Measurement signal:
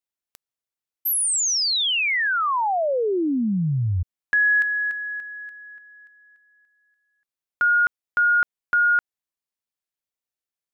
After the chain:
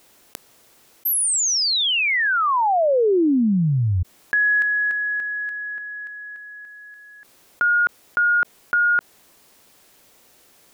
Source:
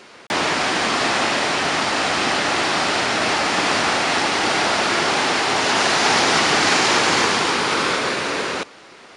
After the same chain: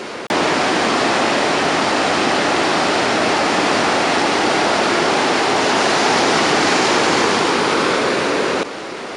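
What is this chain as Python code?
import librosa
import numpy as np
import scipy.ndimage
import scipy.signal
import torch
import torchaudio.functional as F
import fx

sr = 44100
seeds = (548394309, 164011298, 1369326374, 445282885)

y = fx.peak_eq(x, sr, hz=370.0, db=7.0, octaves=2.6)
y = fx.env_flatten(y, sr, amount_pct=50)
y = F.gain(torch.from_numpy(y), -2.0).numpy()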